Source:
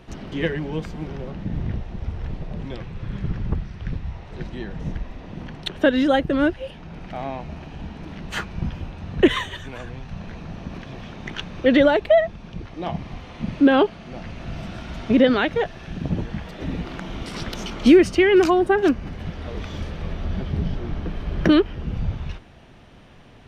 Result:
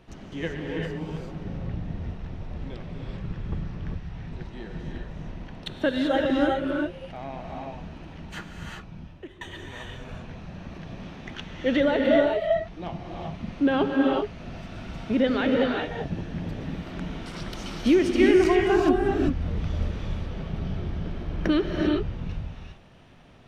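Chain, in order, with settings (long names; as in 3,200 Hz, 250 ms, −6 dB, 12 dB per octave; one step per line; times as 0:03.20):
0:07.88–0:09.41: fade out
0:18.20–0:19.92: low-shelf EQ 200 Hz +9.5 dB
reverb whose tail is shaped and stops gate 420 ms rising, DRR −0.5 dB
level −7.5 dB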